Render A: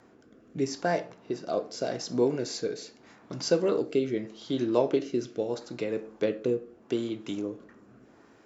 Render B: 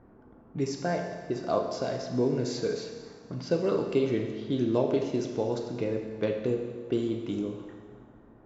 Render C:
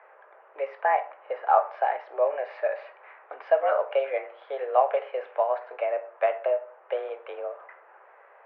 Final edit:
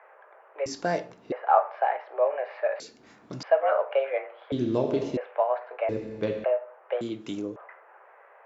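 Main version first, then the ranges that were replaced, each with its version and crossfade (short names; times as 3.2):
C
0.66–1.32 from A
2.8–3.43 from A
4.52–5.17 from B
5.89–6.44 from B
7.01–7.56 from A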